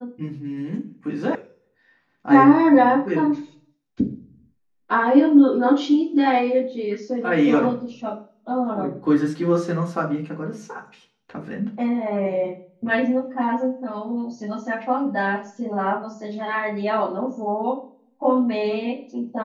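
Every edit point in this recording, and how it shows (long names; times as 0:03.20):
0:01.35: cut off before it has died away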